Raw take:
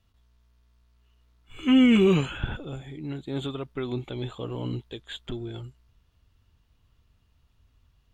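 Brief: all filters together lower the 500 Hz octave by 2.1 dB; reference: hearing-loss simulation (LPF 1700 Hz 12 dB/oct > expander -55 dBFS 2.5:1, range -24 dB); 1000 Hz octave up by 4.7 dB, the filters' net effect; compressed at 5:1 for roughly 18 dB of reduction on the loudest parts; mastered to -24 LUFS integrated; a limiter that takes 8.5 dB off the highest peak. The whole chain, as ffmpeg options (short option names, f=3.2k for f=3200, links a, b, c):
-af "equalizer=f=500:t=o:g=-4.5,equalizer=f=1k:t=o:g=8,acompressor=threshold=-37dB:ratio=5,alimiter=level_in=10.5dB:limit=-24dB:level=0:latency=1,volume=-10.5dB,lowpass=1.7k,agate=range=-24dB:threshold=-55dB:ratio=2.5,volume=20.5dB"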